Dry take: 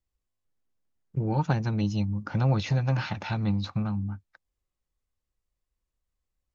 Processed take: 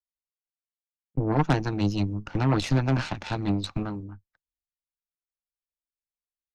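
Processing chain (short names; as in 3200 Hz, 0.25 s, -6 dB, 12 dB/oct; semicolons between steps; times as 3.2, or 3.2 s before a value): added harmonics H 8 -14 dB, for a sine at -10 dBFS; three-band expander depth 70%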